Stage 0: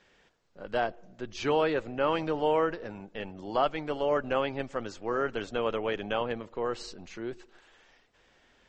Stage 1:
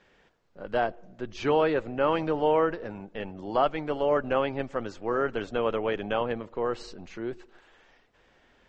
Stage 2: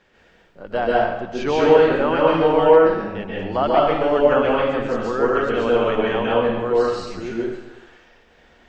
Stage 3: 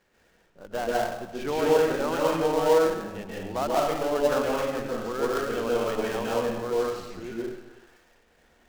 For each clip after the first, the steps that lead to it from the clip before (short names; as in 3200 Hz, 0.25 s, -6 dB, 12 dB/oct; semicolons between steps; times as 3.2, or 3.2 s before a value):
high shelf 3500 Hz -9 dB; gain +3 dB
reverb RT60 0.95 s, pre-delay 0.123 s, DRR -5.5 dB; gain +2.5 dB
switching dead time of 0.12 ms; gain -8 dB